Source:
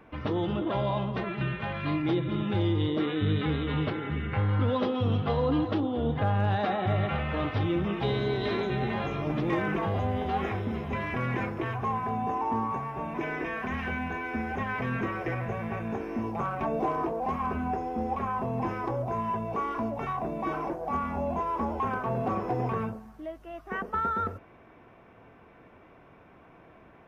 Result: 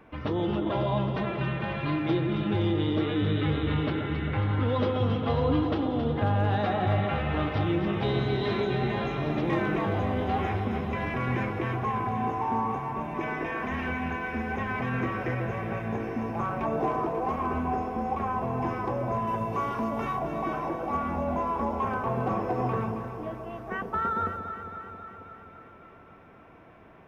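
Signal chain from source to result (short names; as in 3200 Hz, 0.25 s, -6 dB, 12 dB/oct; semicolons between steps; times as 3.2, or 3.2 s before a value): 19.27–20.19 high shelf 3700 Hz +7.5 dB; echo with dull and thin repeats by turns 0.135 s, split 880 Hz, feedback 82%, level -6.5 dB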